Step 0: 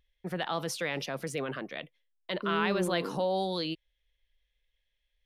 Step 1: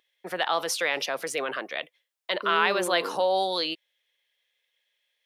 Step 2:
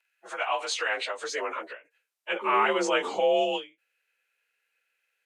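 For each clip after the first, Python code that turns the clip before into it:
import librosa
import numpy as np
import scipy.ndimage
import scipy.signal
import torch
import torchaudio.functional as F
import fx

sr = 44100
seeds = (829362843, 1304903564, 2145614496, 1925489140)

y1 = scipy.signal.sosfilt(scipy.signal.butter(2, 520.0, 'highpass', fs=sr, output='sos'), x)
y1 = F.gain(torch.from_numpy(y1), 8.0).numpy()
y2 = fx.partial_stretch(y1, sr, pct=90)
y2 = fx.filter_sweep_highpass(y2, sr, from_hz=810.0, to_hz=190.0, start_s=0.09, end_s=3.38, q=0.82)
y2 = fx.end_taper(y2, sr, db_per_s=210.0)
y2 = F.gain(torch.from_numpy(y2), 1.5).numpy()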